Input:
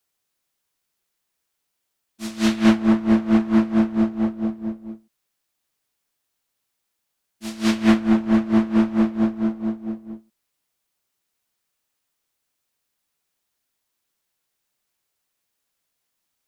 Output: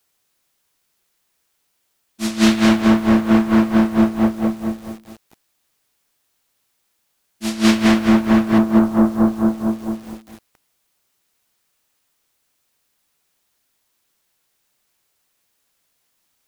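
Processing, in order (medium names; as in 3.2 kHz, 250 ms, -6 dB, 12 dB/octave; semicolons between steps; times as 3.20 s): 8.58–10.04 s: low-pass 1.4 kHz 24 dB/octave; loudness maximiser +9.5 dB; bit-crushed delay 211 ms, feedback 35%, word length 6-bit, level -7 dB; trim -1 dB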